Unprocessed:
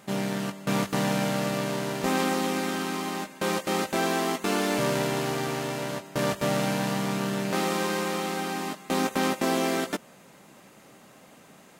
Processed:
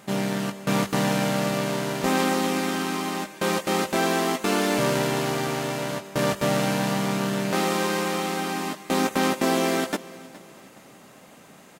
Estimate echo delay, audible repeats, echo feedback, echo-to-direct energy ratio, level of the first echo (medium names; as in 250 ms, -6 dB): 417 ms, 2, 39%, -19.5 dB, -20.0 dB